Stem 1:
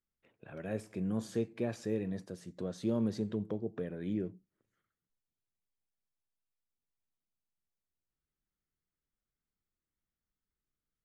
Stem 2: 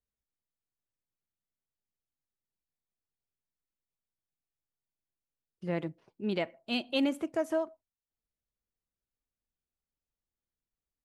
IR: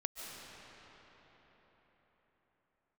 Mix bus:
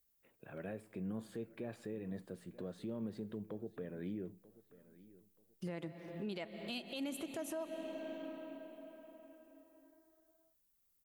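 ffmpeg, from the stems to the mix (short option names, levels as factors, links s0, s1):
-filter_complex "[0:a]highpass=f=110:p=1,equalizer=f=5900:t=o:w=0.62:g=-14.5,alimiter=level_in=2.11:limit=0.0631:level=0:latency=1:release=234,volume=0.473,volume=0.841,asplit=2[s0][s1];[s1]volume=0.0944[s2];[1:a]aemphasis=mode=production:type=50fm,volume=1.12,asplit=2[s3][s4];[s4]volume=0.355[s5];[2:a]atrim=start_sample=2205[s6];[s5][s6]afir=irnorm=-1:irlink=0[s7];[s2]aecho=0:1:934|1868|2802|3736:1|0.3|0.09|0.027[s8];[s0][s3][s7][s8]amix=inputs=4:normalize=0,alimiter=level_in=2.99:limit=0.0631:level=0:latency=1:release=326,volume=0.335"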